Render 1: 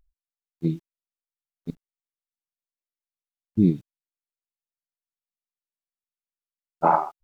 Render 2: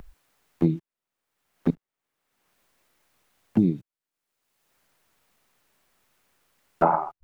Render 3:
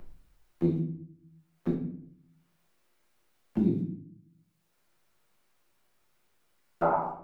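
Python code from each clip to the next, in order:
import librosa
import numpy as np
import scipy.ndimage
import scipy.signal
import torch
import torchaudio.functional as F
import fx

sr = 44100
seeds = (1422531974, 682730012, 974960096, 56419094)

y1 = fx.band_squash(x, sr, depth_pct=100)
y1 = y1 * librosa.db_to_amplitude(3.0)
y2 = fx.room_shoebox(y1, sr, seeds[0], volume_m3=89.0, walls='mixed', distance_m=0.89)
y2 = y2 * librosa.db_to_amplitude(-9.0)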